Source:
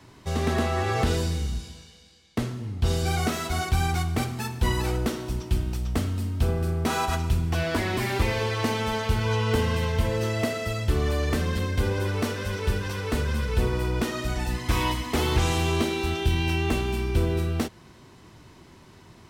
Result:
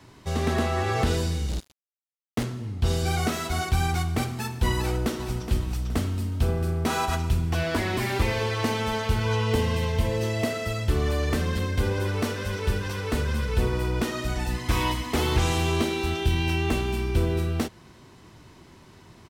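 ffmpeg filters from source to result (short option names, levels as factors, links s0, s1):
-filter_complex "[0:a]asplit=3[s0][s1][s2];[s0]afade=t=out:st=1.48:d=0.02[s3];[s1]acrusher=bits=4:mix=0:aa=0.5,afade=t=in:st=1.48:d=0.02,afade=t=out:st=2.43:d=0.02[s4];[s2]afade=t=in:st=2.43:d=0.02[s5];[s3][s4][s5]amix=inputs=3:normalize=0,asplit=2[s6][s7];[s7]afade=t=in:st=4.77:d=0.01,afade=t=out:st=5.41:d=0.01,aecho=0:1:420|840|1260|1680:0.354813|0.141925|0.0567701|0.0227081[s8];[s6][s8]amix=inputs=2:normalize=0,asettb=1/sr,asplit=3[s9][s10][s11];[s9]atrim=end=9.464[s12];[s10]atrim=start=9.46:end=10.46,asetpts=PTS-STARTPTS,afade=t=in:d=0.004:c=qsin,afade=t=out:st=0.996:d=0.004:c=qsin,equalizer=f=1400:w=3.8:g=-7.5[s13];[s11]atrim=start=10.456[s14];[s12][s13]acrossfade=d=0.004:c1=hsin:c2=qsin[s15];[s15][s14]acrossfade=d=0.004:c1=qsin:c2=hsin"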